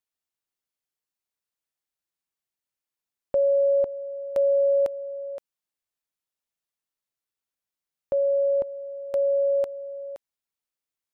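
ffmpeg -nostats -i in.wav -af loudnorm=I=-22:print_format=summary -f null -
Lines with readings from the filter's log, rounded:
Input Integrated:    -24.5 LUFS
Input True Peak:     -17.0 dBTP
Input LRA:             4.8 LU
Input Threshold:     -35.5 LUFS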